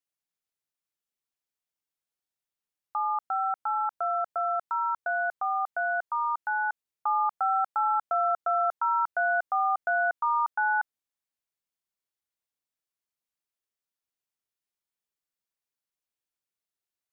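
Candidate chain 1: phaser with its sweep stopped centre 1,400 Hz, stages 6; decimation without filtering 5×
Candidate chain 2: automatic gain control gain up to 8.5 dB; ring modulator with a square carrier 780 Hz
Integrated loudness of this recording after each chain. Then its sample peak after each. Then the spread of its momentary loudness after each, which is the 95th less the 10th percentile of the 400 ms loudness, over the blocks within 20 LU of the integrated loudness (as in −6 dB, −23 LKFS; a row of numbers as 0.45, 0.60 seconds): −31.5, −18.5 LKFS; −22.0, −10.5 dBFS; 4, 4 LU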